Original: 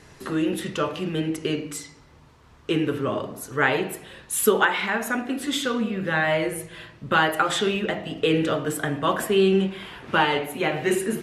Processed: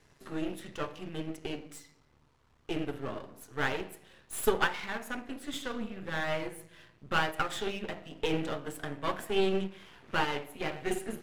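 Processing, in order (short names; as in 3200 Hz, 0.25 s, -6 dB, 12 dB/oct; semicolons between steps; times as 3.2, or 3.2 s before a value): half-wave gain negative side -12 dB; upward expander 1.5:1, over -32 dBFS; gain -3.5 dB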